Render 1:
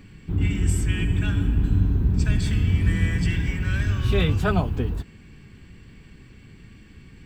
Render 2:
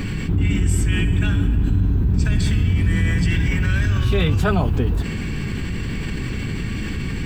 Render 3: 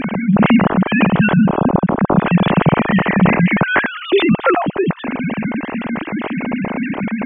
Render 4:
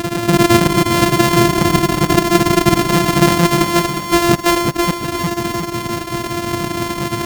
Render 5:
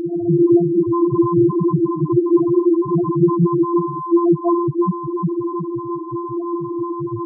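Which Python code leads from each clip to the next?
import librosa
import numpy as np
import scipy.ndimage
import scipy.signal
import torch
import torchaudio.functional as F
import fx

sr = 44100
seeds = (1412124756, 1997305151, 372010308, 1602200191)

y1 = fx.env_flatten(x, sr, amount_pct=70)
y2 = fx.sine_speech(y1, sr)
y2 = F.gain(torch.from_numpy(y2), 3.5).numpy()
y3 = np.r_[np.sort(y2[:len(y2) // 128 * 128].reshape(-1, 128), axis=1).ravel(), y2[len(y2) // 128 * 128:]]
y3 = fx.echo_feedback(y3, sr, ms=359, feedback_pct=50, wet_db=-7)
y4 = fx.spec_topn(y3, sr, count=2)
y4 = F.gain(torch.from_numpy(y4), 3.5).numpy()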